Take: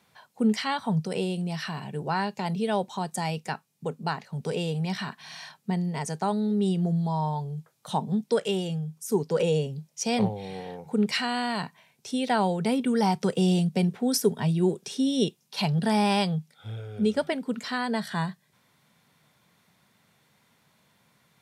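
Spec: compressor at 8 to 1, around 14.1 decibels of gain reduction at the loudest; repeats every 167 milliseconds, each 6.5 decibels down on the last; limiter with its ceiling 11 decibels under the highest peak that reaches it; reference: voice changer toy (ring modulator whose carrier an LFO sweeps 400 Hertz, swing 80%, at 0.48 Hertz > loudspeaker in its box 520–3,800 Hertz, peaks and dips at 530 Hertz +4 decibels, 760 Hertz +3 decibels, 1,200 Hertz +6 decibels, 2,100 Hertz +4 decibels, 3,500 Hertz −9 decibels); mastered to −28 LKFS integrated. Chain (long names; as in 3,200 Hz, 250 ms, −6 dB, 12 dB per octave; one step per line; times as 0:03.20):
downward compressor 8 to 1, threshold −33 dBFS
brickwall limiter −32.5 dBFS
repeating echo 167 ms, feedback 47%, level −6.5 dB
ring modulator whose carrier an LFO sweeps 400 Hz, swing 80%, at 0.48 Hz
loudspeaker in its box 520–3,800 Hz, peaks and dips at 530 Hz +4 dB, 760 Hz +3 dB, 1,200 Hz +6 dB, 2,100 Hz +4 dB, 3,500 Hz −9 dB
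level +16 dB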